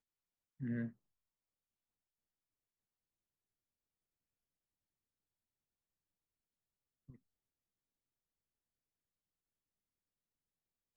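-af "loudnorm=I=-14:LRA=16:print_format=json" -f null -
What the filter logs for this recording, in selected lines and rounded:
"input_i" : "-43.0",
"input_tp" : "-30.8",
"input_lra" : "0.0",
"input_thresh" : "-55.6",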